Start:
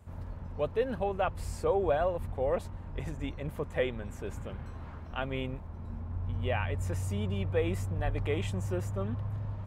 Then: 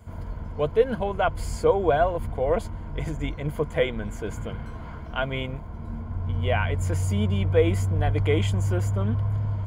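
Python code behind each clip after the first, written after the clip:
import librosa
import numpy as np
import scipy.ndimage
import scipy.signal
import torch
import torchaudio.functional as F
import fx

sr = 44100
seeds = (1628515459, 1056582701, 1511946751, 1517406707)

y = fx.ripple_eq(x, sr, per_octave=1.8, db=9)
y = y * 10.0 ** (6.5 / 20.0)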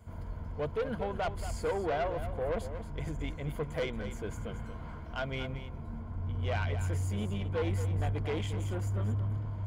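y = 10.0 ** (-21.5 / 20.0) * np.tanh(x / 10.0 ** (-21.5 / 20.0))
y = y + 10.0 ** (-10.5 / 20.0) * np.pad(y, (int(229 * sr / 1000.0), 0))[:len(y)]
y = y * 10.0 ** (-6.0 / 20.0)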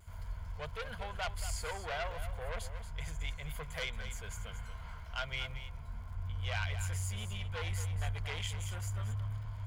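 y = fx.dmg_crackle(x, sr, seeds[0], per_s=54.0, level_db=-57.0)
y = fx.tone_stack(y, sr, knobs='10-0-10')
y = fx.vibrato(y, sr, rate_hz=0.34, depth_cents=15.0)
y = y * 10.0 ** (6.0 / 20.0)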